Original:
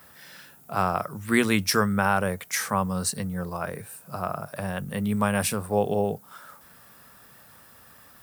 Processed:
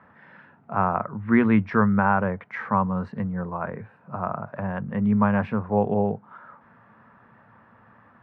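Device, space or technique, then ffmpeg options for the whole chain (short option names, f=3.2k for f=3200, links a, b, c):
bass cabinet: -af "highpass=62,equalizer=f=71:t=q:w=4:g=-7,equalizer=f=110:t=q:w=4:g=6,equalizer=f=220:t=q:w=4:g=7,equalizer=f=960:t=q:w=4:g=6,lowpass=f=2k:w=0.5412,lowpass=f=2k:w=1.3066"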